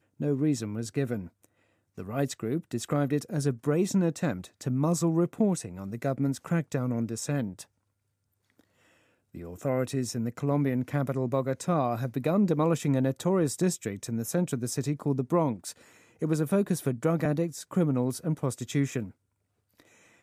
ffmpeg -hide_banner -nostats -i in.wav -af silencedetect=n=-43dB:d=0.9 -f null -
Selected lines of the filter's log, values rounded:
silence_start: 7.63
silence_end: 9.34 | silence_duration: 1.72